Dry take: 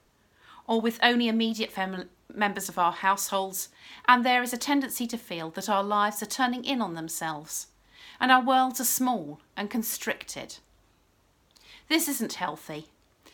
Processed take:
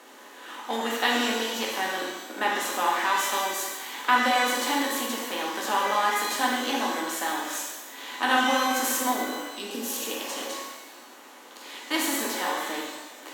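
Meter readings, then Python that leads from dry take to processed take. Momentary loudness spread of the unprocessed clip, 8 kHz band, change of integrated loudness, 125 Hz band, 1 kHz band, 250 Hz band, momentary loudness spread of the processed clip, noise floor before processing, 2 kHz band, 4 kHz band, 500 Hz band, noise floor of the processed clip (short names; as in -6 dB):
16 LU, +2.0 dB, +0.5 dB, under -10 dB, +0.5 dB, -3.0 dB, 15 LU, -65 dBFS, +2.0 dB, +3.0 dB, +1.0 dB, -48 dBFS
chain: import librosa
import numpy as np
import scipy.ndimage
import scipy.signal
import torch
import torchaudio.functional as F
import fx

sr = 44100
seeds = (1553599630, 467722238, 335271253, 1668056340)

y = fx.bin_compress(x, sr, power=0.6)
y = scipy.signal.sosfilt(scipy.signal.butter(4, 270.0, 'highpass', fs=sr, output='sos'), y)
y = fx.spec_repair(y, sr, seeds[0], start_s=9.57, length_s=0.83, low_hz=530.0, high_hz=2400.0, source='both')
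y = fx.rev_shimmer(y, sr, seeds[1], rt60_s=1.1, semitones=12, shimmer_db=-8, drr_db=-2.5)
y = y * 10.0 ** (-7.5 / 20.0)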